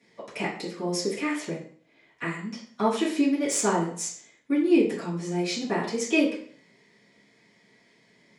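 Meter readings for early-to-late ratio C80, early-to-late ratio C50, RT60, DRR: 10.5 dB, 6.0 dB, 0.50 s, -10.5 dB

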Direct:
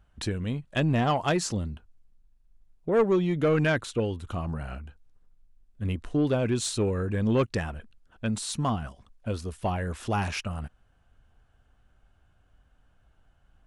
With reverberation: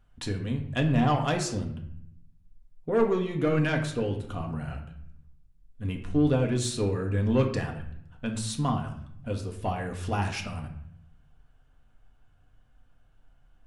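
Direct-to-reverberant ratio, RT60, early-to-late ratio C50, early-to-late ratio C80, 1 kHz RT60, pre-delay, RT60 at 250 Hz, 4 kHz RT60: 2.5 dB, 0.65 s, 8.5 dB, 12.0 dB, 0.65 s, 4 ms, 1.1 s, 0.50 s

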